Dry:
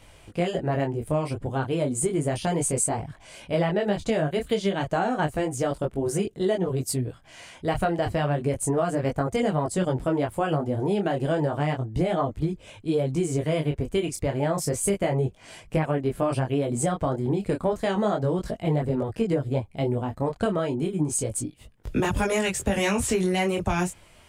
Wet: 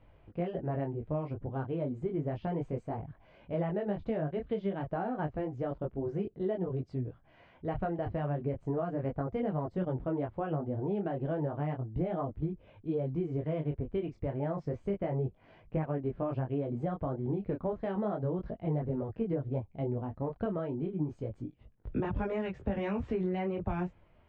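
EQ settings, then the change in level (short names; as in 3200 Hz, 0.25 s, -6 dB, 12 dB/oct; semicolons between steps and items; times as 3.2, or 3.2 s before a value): air absorption 140 m; tape spacing loss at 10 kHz 41 dB; -6.5 dB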